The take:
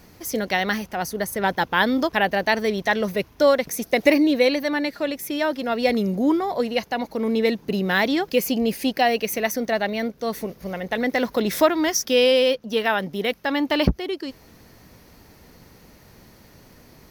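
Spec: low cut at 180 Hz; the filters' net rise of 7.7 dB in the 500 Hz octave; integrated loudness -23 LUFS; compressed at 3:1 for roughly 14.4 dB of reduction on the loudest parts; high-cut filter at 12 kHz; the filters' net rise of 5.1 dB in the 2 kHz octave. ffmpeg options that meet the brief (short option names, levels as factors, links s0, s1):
-af "highpass=180,lowpass=12000,equalizer=f=500:t=o:g=8.5,equalizer=f=2000:t=o:g=5.5,acompressor=threshold=0.0501:ratio=3,volume=1.68"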